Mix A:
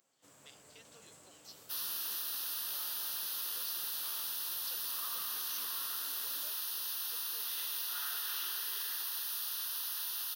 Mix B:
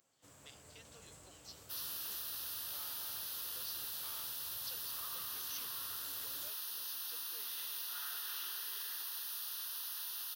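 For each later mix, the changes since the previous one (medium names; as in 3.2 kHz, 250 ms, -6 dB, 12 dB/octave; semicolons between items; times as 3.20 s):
first sound: remove high-pass 160 Hz 12 dB/octave; second sound -4.5 dB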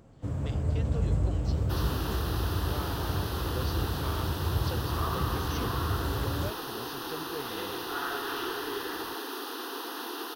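second sound: add peaking EQ 410 Hz +9 dB 2.4 oct; master: remove differentiator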